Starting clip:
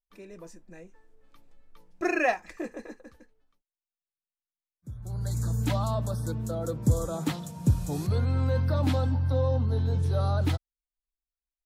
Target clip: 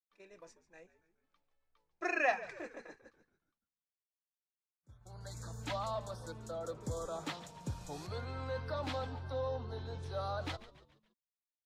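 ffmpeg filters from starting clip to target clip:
-filter_complex "[0:a]acrossover=split=480 7000:gain=0.2 1 0.158[s0][s1][s2];[s0][s1][s2]amix=inputs=3:normalize=0,agate=range=0.316:threshold=0.00224:ratio=16:detection=peak,asplit=5[s3][s4][s5][s6][s7];[s4]adelay=141,afreqshift=-76,volume=0.158[s8];[s5]adelay=282,afreqshift=-152,volume=0.0733[s9];[s6]adelay=423,afreqshift=-228,volume=0.0335[s10];[s7]adelay=564,afreqshift=-304,volume=0.0155[s11];[s3][s8][s9][s10][s11]amix=inputs=5:normalize=0,volume=0.596"

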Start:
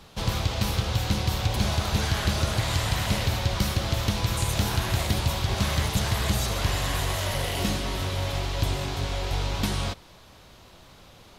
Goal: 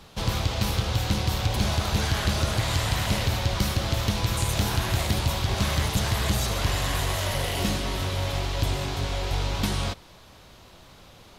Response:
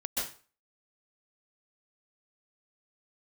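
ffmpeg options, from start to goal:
-af "aeval=exprs='0.211*(cos(1*acos(clip(val(0)/0.211,-1,1)))-cos(1*PI/2))+0.0211*(cos(2*acos(clip(val(0)/0.211,-1,1)))-cos(2*PI/2))+0.00133*(cos(4*acos(clip(val(0)/0.211,-1,1)))-cos(4*PI/2))+0.00944*(cos(5*acos(clip(val(0)/0.211,-1,1)))-cos(5*PI/2))+0.00422*(cos(7*acos(clip(val(0)/0.211,-1,1)))-cos(7*PI/2))':c=same"

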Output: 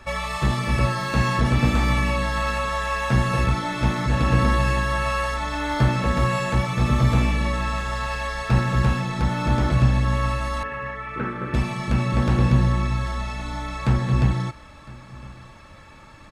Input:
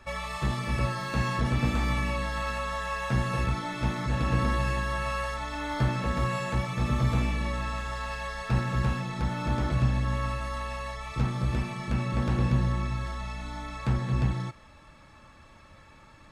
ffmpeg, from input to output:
-filter_complex "[0:a]asettb=1/sr,asplit=3[s0][s1][s2];[s0]atrim=end=10.634[s3];[s1]atrim=start=10.63:end=11.54,asetpts=PTS-STARTPTS,afade=t=in:d=0.004:c=qsin,afade=t=out:st=0.906:d=0.004:c=qsin,highpass=250,equalizer=f=400:t=q:w=4:g=6,equalizer=f=720:t=q:w=4:g=-10,equalizer=f=1000:t=q:w=4:g=-6,equalizer=f=1500:t=q:w=4:g=9,lowpass=f=2400:w=0.5412,lowpass=f=2400:w=1.3066[s4];[s2]atrim=start=11.536[s5];[s3][s4]acrossfade=d=0.004:c1=hsin:c2=qsin[s6];[s6][s5]acrossfade=d=0.004:c1=qsin:c2=hsin,aecho=1:1:1008:0.0841,volume=2.24"

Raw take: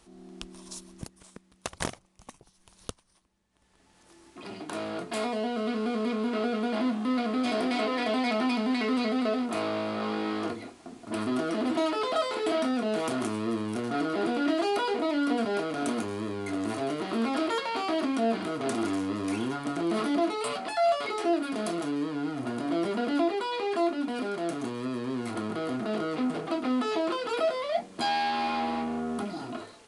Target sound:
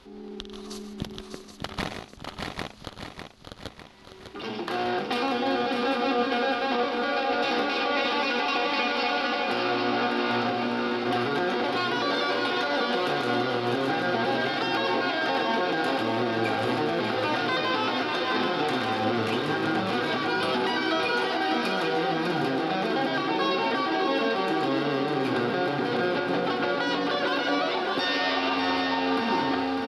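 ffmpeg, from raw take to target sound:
-filter_complex "[0:a]asplit=2[s0][s1];[s1]aecho=0:1:53|96|137|158|646|786:0.2|0.133|0.112|0.168|0.237|0.376[s2];[s0][s2]amix=inputs=2:normalize=0,afftfilt=real='re*lt(hypot(re,im),0.282)':imag='im*lt(hypot(re,im),0.282)':win_size=1024:overlap=0.75,asetrate=49501,aresample=44100,atempo=0.890899,highshelf=f=5800:t=q:w=1.5:g=-13,alimiter=limit=0.0631:level=0:latency=1:release=163,aecho=1:1:601|1202|1803|2404|3005|3606:0.447|0.232|0.121|0.0628|0.0327|0.017,volume=2.24"

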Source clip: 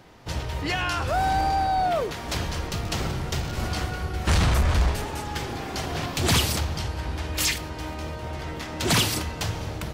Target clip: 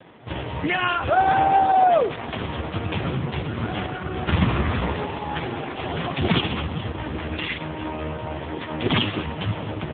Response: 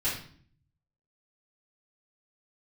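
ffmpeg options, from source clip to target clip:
-filter_complex "[0:a]asplit=3[s0][s1][s2];[s0]afade=t=out:st=7.85:d=0.02[s3];[s1]asoftclip=type=hard:threshold=0.0562,afade=t=in:st=7.85:d=0.02,afade=t=out:st=8.32:d=0.02[s4];[s2]afade=t=in:st=8.32:d=0.02[s5];[s3][s4][s5]amix=inputs=3:normalize=0,asplit=2[s6][s7];[s7]aecho=0:1:127|254|381:0.106|0.0371|0.013[s8];[s6][s8]amix=inputs=2:normalize=0,volume=2.51" -ar 8000 -c:a libopencore_amrnb -b:a 4750

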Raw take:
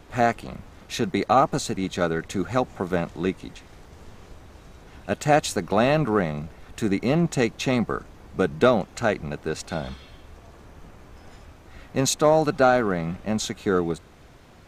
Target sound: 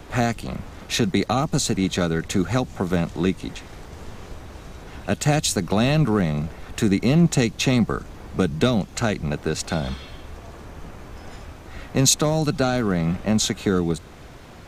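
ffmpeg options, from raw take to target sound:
-filter_complex "[0:a]acrossover=split=240|3000[s0][s1][s2];[s1]acompressor=threshold=0.0251:ratio=4[s3];[s0][s3][s2]amix=inputs=3:normalize=0,volume=2.37"

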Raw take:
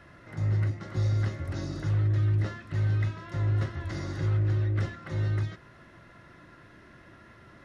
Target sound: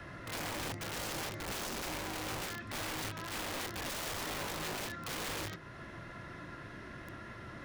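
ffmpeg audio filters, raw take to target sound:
-filter_complex "[0:a]bandreject=f=79.28:t=h:w=4,bandreject=f=158.56:t=h:w=4,bandreject=f=237.84:t=h:w=4,bandreject=f=317.12:t=h:w=4,bandreject=f=396.4:t=h:w=4,bandreject=f=475.68:t=h:w=4,bandreject=f=554.96:t=h:w=4,acrossover=split=160|510|1700[s0][s1][s2][s3];[s0]acompressor=threshold=0.01:ratio=16[s4];[s4][s1][s2][s3]amix=inputs=4:normalize=0,alimiter=level_in=2.51:limit=0.0631:level=0:latency=1:release=450,volume=0.398,aeval=exprs='(mod(100*val(0)+1,2)-1)/100':c=same,volume=1.88"

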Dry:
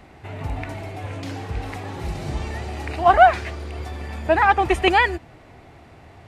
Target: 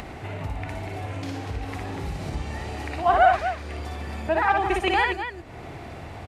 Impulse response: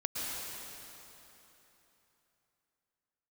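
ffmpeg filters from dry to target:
-af "aecho=1:1:58.31|242:0.708|0.355,acompressor=mode=upward:threshold=0.112:ratio=2.5,volume=0.473"

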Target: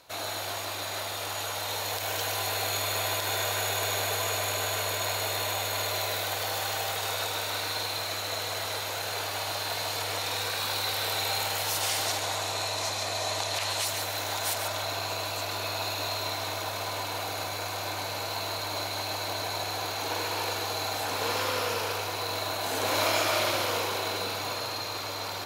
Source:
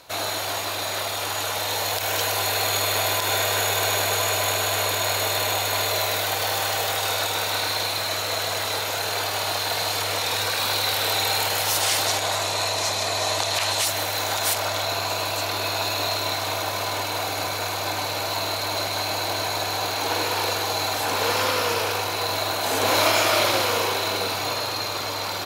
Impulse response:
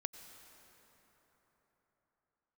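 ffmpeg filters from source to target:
-filter_complex "[0:a]asplit=2[s0][s1];[1:a]atrim=start_sample=2205,adelay=141[s2];[s1][s2]afir=irnorm=-1:irlink=0,volume=0.596[s3];[s0][s3]amix=inputs=2:normalize=0,volume=0.422"

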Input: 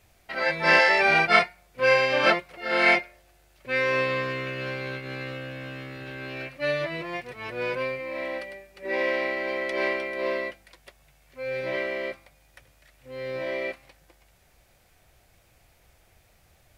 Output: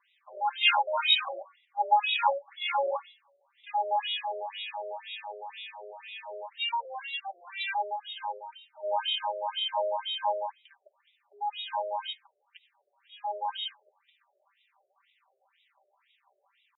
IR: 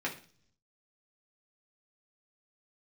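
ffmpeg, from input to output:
-af "equalizer=f=100:t=o:w=0.33:g=-7,equalizer=f=250:t=o:w=0.33:g=-7,equalizer=f=800:t=o:w=0.33:g=-7,equalizer=f=3150:t=o:w=0.33:g=-6,asetrate=70004,aresample=44100,atempo=0.629961,aecho=1:1:5.1:0.95,afftfilt=real='re*between(b*sr/1024,500*pow(2800/500,0.5+0.5*sin(2*PI*2*pts/sr))/1.41,500*pow(2800/500,0.5+0.5*sin(2*PI*2*pts/sr))*1.41)':imag='im*between(b*sr/1024,500*pow(2800/500,0.5+0.5*sin(2*PI*2*pts/sr))/1.41,500*pow(2800/500,0.5+0.5*sin(2*PI*2*pts/sr))*1.41)':win_size=1024:overlap=0.75"

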